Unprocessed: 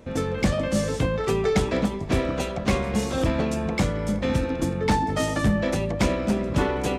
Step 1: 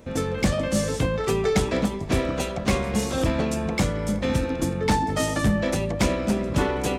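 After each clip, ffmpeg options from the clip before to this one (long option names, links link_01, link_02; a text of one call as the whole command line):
ffmpeg -i in.wav -af "highshelf=frequency=6300:gain=6.5" out.wav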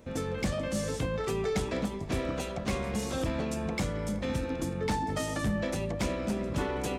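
ffmpeg -i in.wav -af "alimiter=limit=-16.5dB:level=0:latency=1:release=112,volume=-6dB" out.wav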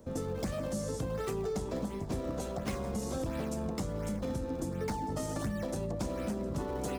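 ffmpeg -i in.wav -filter_complex "[0:a]acrossover=split=200|1400|4100[link_01][link_02][link_03][link_04];[link_03]acrusher=samples=31:mix=1:aa=0.000001:lfo=1:lforange=49.6:lforate=1.4[link_05];[link_01][link_02][link_05][link_04]amix=inputs=4:normalize=0,acompressor=threshold=-31dB:ratio=6" out.wav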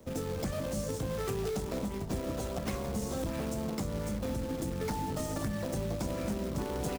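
ffmpeg -i in.wav -filter_complex "[0:a]acrossover=split=220[link_01][link_02];[link_01]aecho=1:1:296:0.631[link_03];[link_02]acrusher=bits=2:mode=log:mix=0:aa=0.000001[link_04];[link_03][link_04]amix=inputs=2:normalize=0" out.wav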